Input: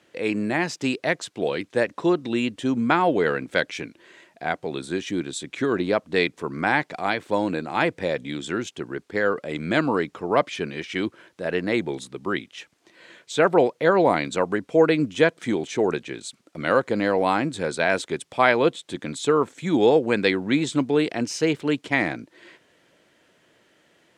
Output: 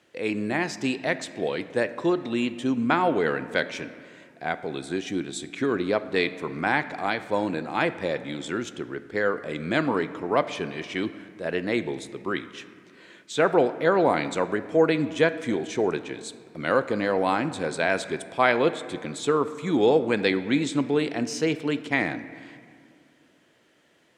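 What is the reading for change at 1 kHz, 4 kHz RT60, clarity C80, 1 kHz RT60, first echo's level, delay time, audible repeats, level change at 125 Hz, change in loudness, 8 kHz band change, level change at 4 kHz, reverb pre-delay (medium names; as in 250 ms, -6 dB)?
-2.0 dB, 1.3 s, 14.5 dB, 2.1 s, no echo, no echo, no echo, -2.5 dB, -2.5 dB, -2.5 dB, -2.5 dB, 3 ms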